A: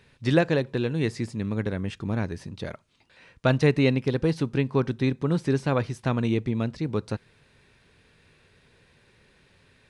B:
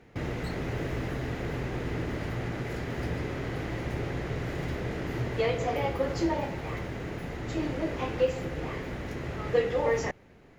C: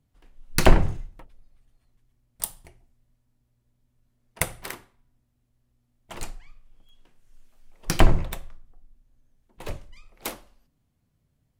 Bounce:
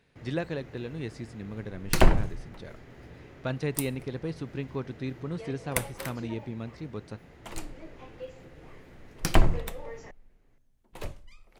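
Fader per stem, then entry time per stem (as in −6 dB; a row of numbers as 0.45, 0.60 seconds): −10.5, −16.0, −3.5 decibels; 0.00, 0.00, 1.35 seconds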